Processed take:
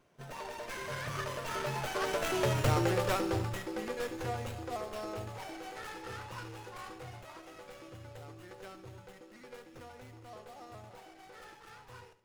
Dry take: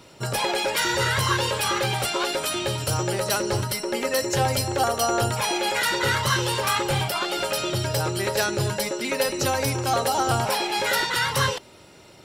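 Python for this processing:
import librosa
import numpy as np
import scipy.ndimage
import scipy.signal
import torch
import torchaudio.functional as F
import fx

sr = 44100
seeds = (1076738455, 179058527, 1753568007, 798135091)

y = fx.doppler_pass(x, sr, speed_mps=32, closest_m=13.0, pass_at_s=2.61)
y = fx.echo_feedback(y, sr, ms=70, feedback_pct=40, wet_db=-14.0)
y = fx.running_max(y, sr, window=9)
y = y * 10.0 ** (-2.0 / 20.0)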